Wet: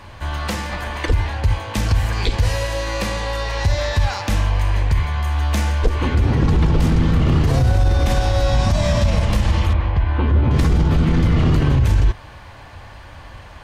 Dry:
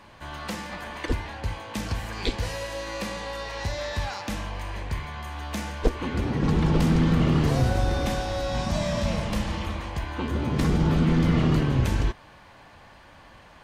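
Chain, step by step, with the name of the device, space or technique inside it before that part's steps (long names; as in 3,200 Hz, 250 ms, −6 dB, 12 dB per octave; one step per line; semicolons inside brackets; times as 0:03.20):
car stereo with a boomy subwoofer (low shelf with overshoot 130 Hz +7.5 dB, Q 1.5; brickwall limiter −16.5 dBFS, peak gain reduction 11 dB)
0:09.73–0:10.51: high-frequency loss of the air 290 metres
level +8.5 dB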